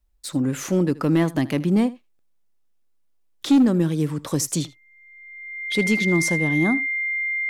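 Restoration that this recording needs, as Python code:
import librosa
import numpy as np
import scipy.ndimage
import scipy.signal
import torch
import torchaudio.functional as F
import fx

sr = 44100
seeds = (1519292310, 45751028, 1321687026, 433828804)

y = fx.fix_declip(x, sr, threshold_db=-11.0)
y = fx.notch(y, sr, hz=2100.0, q=30.0)
y = fx.fix_interpolate(y, sr, at_s=(2.19, 5.72), length_ms=1.0)
y = fx.fix_echo_inverse(y, sr, delay_ms=78, level_db=-20.0)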